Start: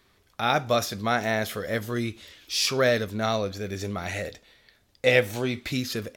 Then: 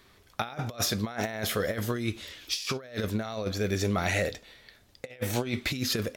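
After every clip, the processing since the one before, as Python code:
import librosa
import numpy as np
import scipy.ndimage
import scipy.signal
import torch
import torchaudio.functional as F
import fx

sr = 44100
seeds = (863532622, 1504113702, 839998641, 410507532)

y = fx.over_compress(x, sr, threshold_db=-30.0, ratio=-0.5)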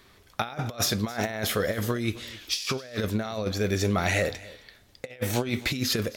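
y = x + 10.0 ** (-20.0 / 20.0) * np.pad(x, (int(264 * sr / 1000.0), 0))[:len(x)]
y = y * librosa.db_to_amplitude(2.5)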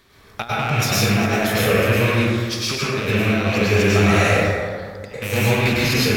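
y = fx.rattle_buzz(x, sr, strikes_db=-35.0, level_db=-17.0)
y = fx.rev_plate(y, sr, seeds[0], rt60_s=1.9, hf_ratio=0.35, predelay_ms=90, drr_db=-8.5)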